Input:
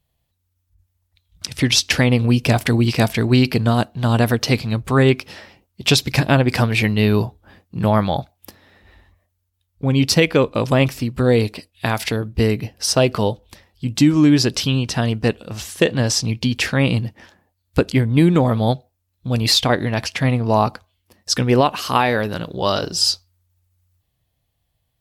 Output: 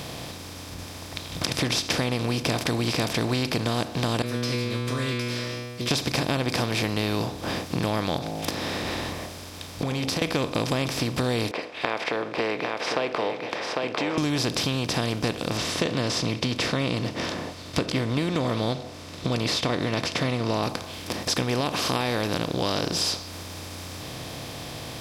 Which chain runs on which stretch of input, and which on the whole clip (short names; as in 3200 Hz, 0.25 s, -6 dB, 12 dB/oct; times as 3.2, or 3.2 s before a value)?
4.22–5.91 Butterworth band-stop 800 Hz, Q 1.5 + metallic resonator 120 Hz, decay 0.85 s, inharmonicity 0.002
8.18–10.22 de-hum 53.29 Hz, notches 17 + compressor 10:1, threshold -30 dBFS
11.51–14.18 Chebyshev band-pass 450–2300 Hz, order 3 + echo 0.8 s -14.5 dB
15.57–20.63 LPF 4900 Hz + notch comb 820 Hz
whole clip: per-bin compression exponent 0.4; high shelf 9700 Hz +3.5 dB; compressor 3:1, threshold -21 dBFS; gain -4.5 dB